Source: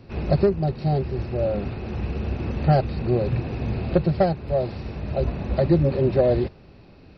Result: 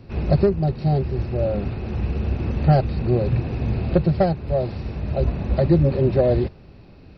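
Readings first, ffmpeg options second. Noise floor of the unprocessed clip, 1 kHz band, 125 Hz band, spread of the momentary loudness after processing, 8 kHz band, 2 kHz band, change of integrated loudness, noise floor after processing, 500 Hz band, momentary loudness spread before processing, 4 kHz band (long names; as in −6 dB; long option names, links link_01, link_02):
−48 dBFS, +0.5 dB, +3.5 dB, 8 LU, can't be measured, 0.0 dB, +2.0 dB, −45 dBFS, +0.5 dB, 9 LU, 0.0 dB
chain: -af "lowshelf=frequency=180:gain=5"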